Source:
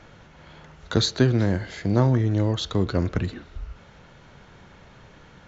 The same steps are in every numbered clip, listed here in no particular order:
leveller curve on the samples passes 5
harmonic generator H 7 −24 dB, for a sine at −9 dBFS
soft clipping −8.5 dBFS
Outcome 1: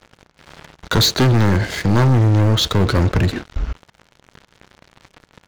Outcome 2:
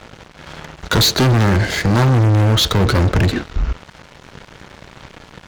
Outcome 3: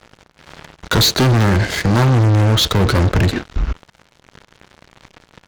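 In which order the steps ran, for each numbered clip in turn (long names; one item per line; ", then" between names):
soft clipping, then harmonic generator, then leveller curve on the samples
soft clipping, then leveller curve on the samples, then harmonic generator
leveller curve on the samples, then soft clipping, then harmonic generator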